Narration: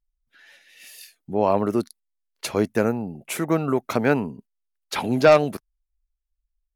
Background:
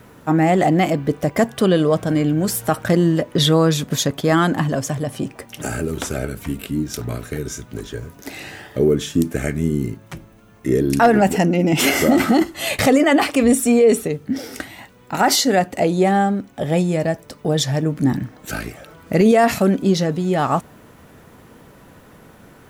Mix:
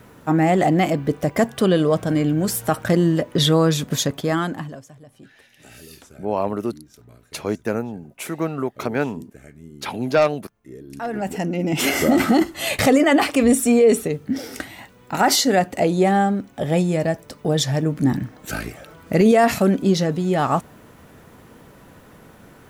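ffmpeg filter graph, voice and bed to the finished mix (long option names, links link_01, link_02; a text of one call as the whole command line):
ffmpeg -i stem1.wav -i stem2.wav -filter_complex "[0:a]adelay=4900,volume=-2.5dB[link_01];[1:a]volume=19.5dB,afade=type=out:start_time=4:duration=0.85:silence=0.0944061,afade=type=in:start_time=10.88:duration=1.37:silence=0.0891251[link_02];[link_01][link_02]amix=inputs=2:normalize=0" out.wav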